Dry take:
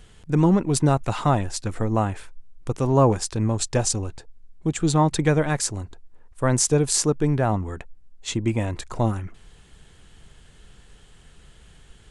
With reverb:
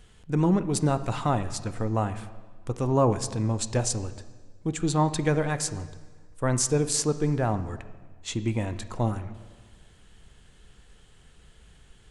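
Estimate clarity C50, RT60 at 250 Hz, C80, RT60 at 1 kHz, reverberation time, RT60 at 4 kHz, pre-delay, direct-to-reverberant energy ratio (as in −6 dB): 13.0 dB, 1.6 s, 14.5 dB, 1.4 s, 1.5 s, 1.4 s, 3 ms, 11.0 dB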